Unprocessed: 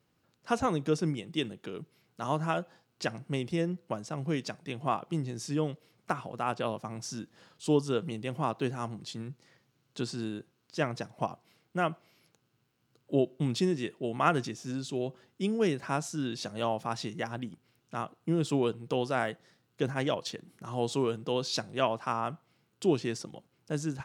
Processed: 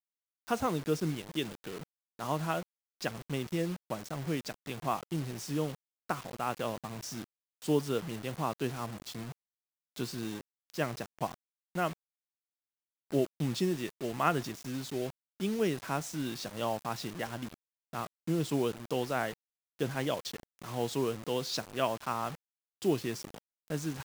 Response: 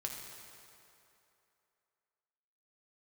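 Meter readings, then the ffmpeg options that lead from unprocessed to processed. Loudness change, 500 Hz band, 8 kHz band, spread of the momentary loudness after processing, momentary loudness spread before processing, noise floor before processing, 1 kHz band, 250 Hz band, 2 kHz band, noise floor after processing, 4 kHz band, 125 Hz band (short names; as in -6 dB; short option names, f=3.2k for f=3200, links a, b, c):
-2.5 dB, -2.5 dB, 0.0 dB, 12 LU, 12 LU, -74 dBFS, -2.5 dB, -2.5 dB, -2.0 dB, under -85 dBFS, -1.5 dB, -2.5 dB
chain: -af "acrusher=bits=6:mix=0:aa=0.000001,volume=-2.5dB"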